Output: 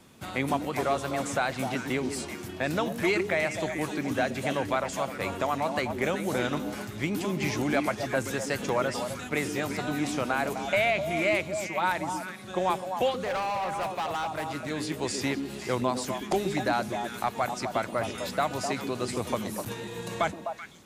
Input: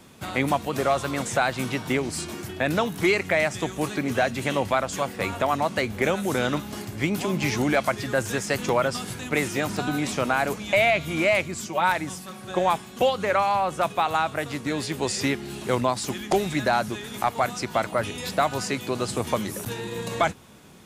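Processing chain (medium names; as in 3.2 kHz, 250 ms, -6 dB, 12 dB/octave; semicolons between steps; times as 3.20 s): vibrato 3.5 Hz 5.3 cents; repeats whose band climbs or falls 127 ms, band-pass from 280 Hz, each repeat 1.4 oct, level -2 dB; 13.11–14.70 s: hard clipper -22 dBFS, distortion -18 dB; trim -5 dB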